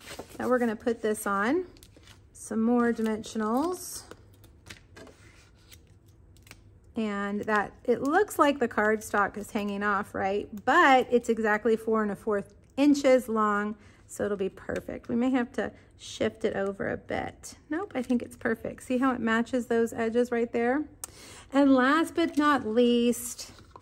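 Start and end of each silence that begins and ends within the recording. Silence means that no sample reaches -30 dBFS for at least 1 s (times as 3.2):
4.71–6.51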